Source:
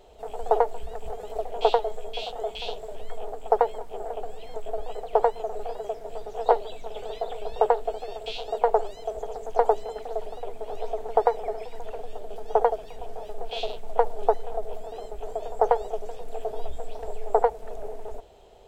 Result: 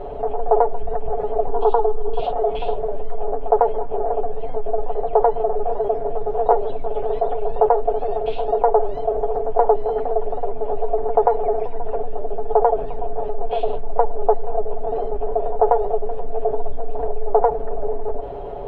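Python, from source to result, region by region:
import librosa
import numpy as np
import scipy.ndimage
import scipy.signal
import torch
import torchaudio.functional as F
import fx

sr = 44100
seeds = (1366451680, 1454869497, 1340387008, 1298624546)

y = fx.chain(x, sr, fx.fixed_phaser(hz=600.0, stages=6),
    fx.env_flatten(amount_pct=50), at=(1.47, 2.2))
y = scipy.signal.sosfilt(scipy.signal.butter(2, 1100.0, 'lowpass', fs=sr, output='sos'), y)
y = y + 0.69 * np.pad(y, (int(7.1 * sr / 1000.0), 0))[:len(y)]
y = fx.env_flatten(y, sr, amount_pct=50)
y = F.gain(torch.from_numpy(y), 2.0).numpy()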